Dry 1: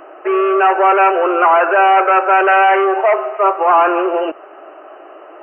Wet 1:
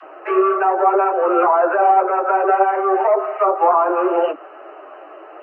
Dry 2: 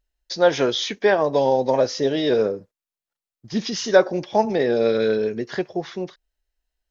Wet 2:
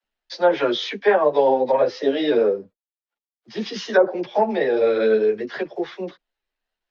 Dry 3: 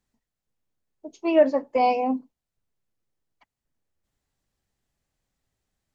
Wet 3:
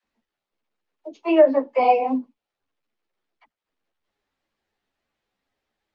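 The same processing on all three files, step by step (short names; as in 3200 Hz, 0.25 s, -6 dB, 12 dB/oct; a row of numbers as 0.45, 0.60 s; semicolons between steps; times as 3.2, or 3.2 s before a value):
companded quantiser 8-bit; three-band isolator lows -14 dB, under 250 Hz, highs -20 dB, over 4300 Hz; treble ducked by the level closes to 830 Hz, closed at -9 dBFS; dispersion lows, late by 41 ms, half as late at 360 Hz; ensemble effect; normalise peaks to -3 dBFS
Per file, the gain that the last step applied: +2.5, +5.0, +7.0 dB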